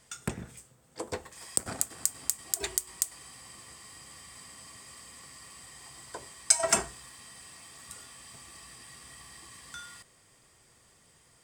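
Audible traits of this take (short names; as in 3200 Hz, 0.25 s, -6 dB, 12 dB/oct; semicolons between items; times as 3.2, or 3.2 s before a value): noise floor -62 dBFS; spectral tilt -2.0 dB/oct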